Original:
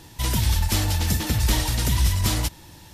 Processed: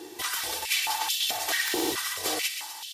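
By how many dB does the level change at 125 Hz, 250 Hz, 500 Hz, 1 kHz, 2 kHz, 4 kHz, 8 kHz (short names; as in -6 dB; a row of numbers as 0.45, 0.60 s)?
-35.0, -8.0, +0.5, 0.0, +3.0, +1.0, -1.5 dB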